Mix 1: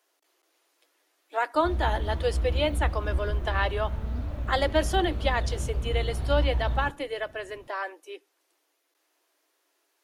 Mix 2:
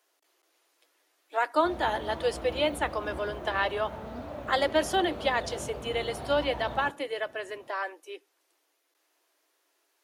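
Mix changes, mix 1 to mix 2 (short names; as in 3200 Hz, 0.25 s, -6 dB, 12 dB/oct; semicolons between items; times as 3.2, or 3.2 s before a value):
background: add bell 680 Hz +7.5 dB 1.4 oct; master: add Bessel high-pass 220 Hz, order 2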